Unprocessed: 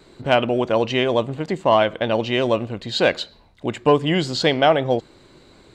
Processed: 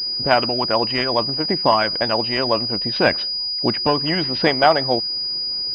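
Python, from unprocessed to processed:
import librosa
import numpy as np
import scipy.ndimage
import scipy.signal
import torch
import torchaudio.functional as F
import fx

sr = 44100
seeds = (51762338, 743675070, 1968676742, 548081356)

y = fx.dynamic_eq(x, sr, hz=490.0, q=1.8, threshold_db=-30.0, ratio=4.0, max_db=-7)
y = fx.hpss(y, sr, part='harmonic', gain_db=-10)
y = fx.pwm(y, sr, carrier_hz=4900.0)
y = F.gain(torch.from_numpy(y), 6.0).numpy()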